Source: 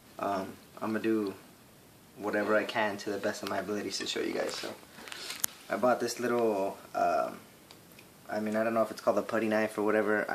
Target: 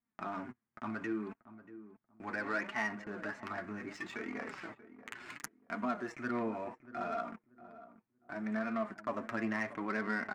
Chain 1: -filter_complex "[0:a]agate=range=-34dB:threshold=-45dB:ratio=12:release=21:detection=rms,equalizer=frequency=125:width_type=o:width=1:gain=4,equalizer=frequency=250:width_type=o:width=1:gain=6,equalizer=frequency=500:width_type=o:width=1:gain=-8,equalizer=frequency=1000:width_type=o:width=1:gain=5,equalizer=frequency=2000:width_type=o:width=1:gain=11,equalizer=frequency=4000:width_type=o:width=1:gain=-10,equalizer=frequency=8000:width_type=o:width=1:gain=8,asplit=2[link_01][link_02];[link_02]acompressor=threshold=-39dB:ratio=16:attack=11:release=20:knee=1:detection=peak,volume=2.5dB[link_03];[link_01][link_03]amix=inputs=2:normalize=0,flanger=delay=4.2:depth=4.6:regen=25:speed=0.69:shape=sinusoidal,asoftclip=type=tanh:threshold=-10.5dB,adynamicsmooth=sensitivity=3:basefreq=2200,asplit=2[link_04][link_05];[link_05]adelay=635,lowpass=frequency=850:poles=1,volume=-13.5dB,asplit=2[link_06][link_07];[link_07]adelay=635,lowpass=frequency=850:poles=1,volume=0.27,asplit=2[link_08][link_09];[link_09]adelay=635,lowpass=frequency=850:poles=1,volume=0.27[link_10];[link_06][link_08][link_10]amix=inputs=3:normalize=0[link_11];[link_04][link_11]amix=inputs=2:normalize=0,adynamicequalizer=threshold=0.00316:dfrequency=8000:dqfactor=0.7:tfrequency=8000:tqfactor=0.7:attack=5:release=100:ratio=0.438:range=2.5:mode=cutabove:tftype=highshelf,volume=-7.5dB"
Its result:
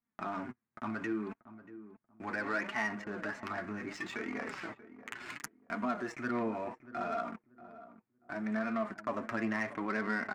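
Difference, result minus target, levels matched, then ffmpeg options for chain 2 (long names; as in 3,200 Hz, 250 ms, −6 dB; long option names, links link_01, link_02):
downward compressor: peak gain reduction −9 dB
-filter_complex "[0:a]agate=range=-34dB:threshold=-45dB:ratio=12:release=21:detection=rms,equalizer=frequency=125:width_type=o:width=1:gain=4,equalizer=frequency=250:width_type=o:width=1:gain=6,equalizer=frequency=500:width_type=o:width=1:gain=-8,equalizer=frequency=1000:width_type=o:width=1:gain=5,equalizer=frequency=2000:width_type=o:width=1:gain=11,equalizer=frequency=4000:width_type=o:width=1:gain=-10,equalizer=frequency=8000:width_type=o:width=1:gain=8,asplit=2[link_01][link_02];[link_02]acompressor=threshold=-48.5dB:ratio=16:attack=11:release=20:knee=1:detection=peak,volume=2.5dB[link_03];[link_01][link_03]amix=inputs=2:normalize=0,flanger=delay=4.2:depth=4.6:regen=25:speed=0.69:shape=sinusoidal,asoftclip=type=tanh:threshold=-10.5dB,adynamicsmooth=sensitivity=3:basefreq=2200,asplit=2[link_04][link_05];[link_05]adelay=635,lowpass=frequency=850:poles=1,volume=-13.5dB,asplit=2[link_06][link_07];[link_07]adelay=635,lowpass=frequency=850:poles=1,volume=0.27,asplit=2[link_08][link_09];[link_09]adelay=635,lowpass=frequency=850:poles=1,volume=0.27[link_10];[link_06][link_08][link_10]amix=inputs=3:normalize=0[link_11];[link_04][link_11]amix=inputs=2:normalize=0,adynamicequalizer=threshold=0.00316:dfrequency=8000:dqfactor=0.7:tfrequency=8000:tqfactor=0.7:attack=5:release=100:ratio=0.438:range=2.5:mode=cutabove:tftype=highshelf,volume=-7.5dB"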